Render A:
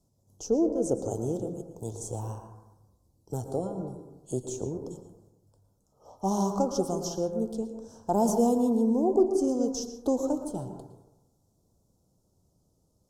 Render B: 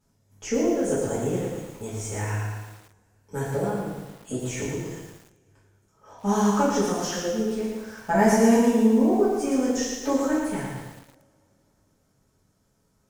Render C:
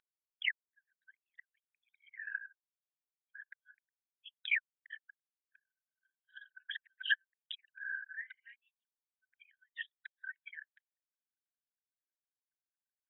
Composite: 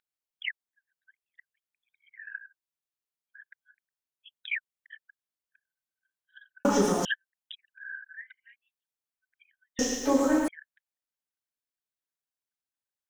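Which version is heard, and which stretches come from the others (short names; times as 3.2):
C
6.65–7.05 from B
9.79–10.48 from B
not used: A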